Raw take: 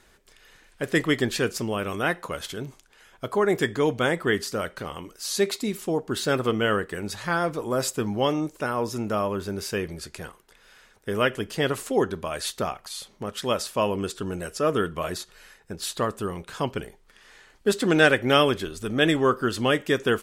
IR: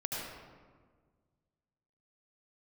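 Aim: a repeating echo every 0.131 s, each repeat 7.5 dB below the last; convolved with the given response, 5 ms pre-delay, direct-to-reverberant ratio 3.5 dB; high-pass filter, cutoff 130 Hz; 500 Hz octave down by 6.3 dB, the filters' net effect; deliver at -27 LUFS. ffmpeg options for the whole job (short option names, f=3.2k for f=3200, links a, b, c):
-filter_complex "[0:a]highpass=130,equalizer=f=500:t=o:g=-8,aecho=1:1:131|262|393|524|655:0.422|0.177|0.0744|0.0312|0.0131,asplit=2[a][b];[1:a]atrim=start_sample=2205,adelay=5[c];[b][c]afir=irnorm=-1:irlink=0,volume=-7.5dB[d];[a][d]amix=inputs=2:normalize=0,volume=-1dB"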